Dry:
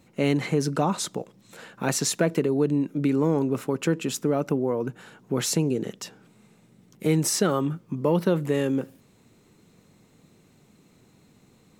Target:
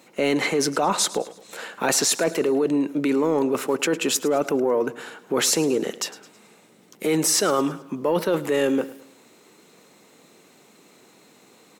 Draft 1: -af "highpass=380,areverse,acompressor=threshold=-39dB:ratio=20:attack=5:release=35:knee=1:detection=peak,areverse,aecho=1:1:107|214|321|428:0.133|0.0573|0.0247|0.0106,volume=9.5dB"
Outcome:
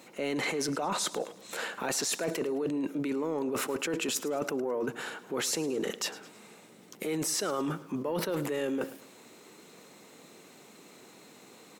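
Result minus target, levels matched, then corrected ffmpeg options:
downward compressor: peak gain reduction +11 dB
-af "highpass=380,areverse,acompressor=threshold=-27.5dB:ratio=20:attack=5:release=35:knee=1:detection=peak,areverse,aecho=1:1:107|214|321|428:0.133|0.0573|0.0247|0.0106,volume=9.5dB"

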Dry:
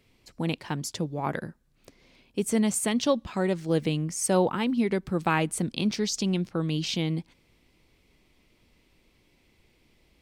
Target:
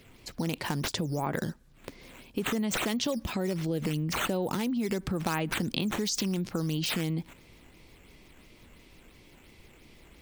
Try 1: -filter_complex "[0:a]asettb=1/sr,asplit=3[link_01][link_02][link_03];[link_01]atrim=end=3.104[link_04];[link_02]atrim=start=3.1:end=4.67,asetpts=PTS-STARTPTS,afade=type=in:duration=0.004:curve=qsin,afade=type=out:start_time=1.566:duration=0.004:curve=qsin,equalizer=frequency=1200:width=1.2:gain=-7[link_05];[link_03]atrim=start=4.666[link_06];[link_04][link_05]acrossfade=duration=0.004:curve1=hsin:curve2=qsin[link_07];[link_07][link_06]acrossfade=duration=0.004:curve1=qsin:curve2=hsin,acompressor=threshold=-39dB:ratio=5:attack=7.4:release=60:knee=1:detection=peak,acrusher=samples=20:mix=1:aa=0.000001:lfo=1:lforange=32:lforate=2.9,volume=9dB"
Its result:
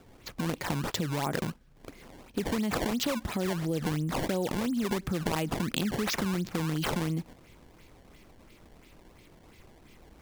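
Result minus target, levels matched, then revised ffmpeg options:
sample-and-hold swept by an LFO: distortion +5 dB
-filter_complex "[0:a]asettb=1/sr,asplit=3[link_01][link_02][link_03];[link_01]atrim=end=3.104[link_04];[link_02]atrim=start=3.1:end=4.67,asetpts=PTS-STARTPTS,afade=type=in:duration=0.004:curve=qsin,afade=type=out:start_time=1.566:duration=0.004:curve=qsin,equalizer=frequency=1200:width=1.2:gain=-7[link_05];[link_03]atrim=start=4.666[link_06];[link_04][link_05]acrossfade=duration=0.004:curve1=hsin:curve2=qsin[link_07];[link_07][link_06]acrossfade=duration=0.004:curve1=qsin:curve2=hsin,acompressor=threshold=-39dB:ratio=5:attack=7.4:release=60:knee=1:detection=peak,acrusher=samples=5:mix=1:aa=0.000001:lfo=1:lforange=8:lforate=2.9,volume=9dB"

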